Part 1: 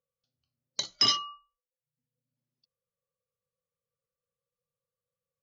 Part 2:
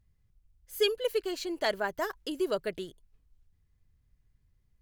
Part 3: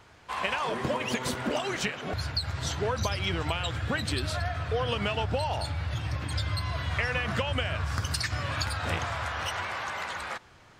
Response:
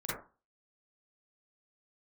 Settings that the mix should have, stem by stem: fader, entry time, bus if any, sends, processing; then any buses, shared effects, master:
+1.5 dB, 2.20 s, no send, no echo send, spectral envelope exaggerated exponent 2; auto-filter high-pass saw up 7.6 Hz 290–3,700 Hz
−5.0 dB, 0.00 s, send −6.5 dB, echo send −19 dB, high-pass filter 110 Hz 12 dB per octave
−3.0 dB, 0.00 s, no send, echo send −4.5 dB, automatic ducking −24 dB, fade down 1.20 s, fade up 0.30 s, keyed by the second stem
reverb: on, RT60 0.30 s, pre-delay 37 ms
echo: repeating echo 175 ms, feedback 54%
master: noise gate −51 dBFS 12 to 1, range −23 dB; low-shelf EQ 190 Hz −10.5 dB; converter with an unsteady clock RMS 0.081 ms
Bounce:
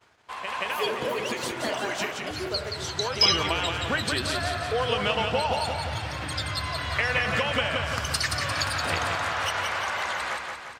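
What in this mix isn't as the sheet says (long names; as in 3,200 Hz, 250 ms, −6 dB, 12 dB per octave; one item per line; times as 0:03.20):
stem 3 −3.0 dB → +4.0 dB
master: missing converter with an unsteady clock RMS 0.081 ms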